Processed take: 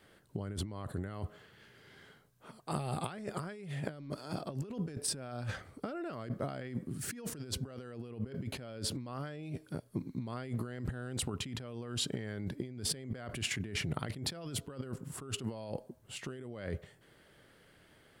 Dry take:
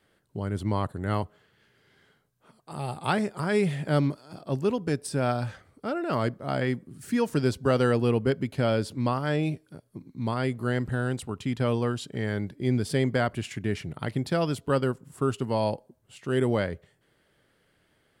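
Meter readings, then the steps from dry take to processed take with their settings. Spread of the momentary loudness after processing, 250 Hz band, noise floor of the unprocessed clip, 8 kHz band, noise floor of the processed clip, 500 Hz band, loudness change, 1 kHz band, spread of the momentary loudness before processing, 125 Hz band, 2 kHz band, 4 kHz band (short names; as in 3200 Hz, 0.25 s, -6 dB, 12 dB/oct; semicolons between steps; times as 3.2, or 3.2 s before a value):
9 LU, -12.5 dB, -68 dBFS, +3.0 dB, -63 dBFS, -16.0 dB, -11.5 dB, -14.0 dB, 10 LU, -11.0 dB, -11.5 dB, -2.0 dB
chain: dynamic EQ 900 Hz, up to -7 dB, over -50 dBFS, Q 5.8; negative-ratio compressor -37 dBFS, ratio -1; gain -3.5 dB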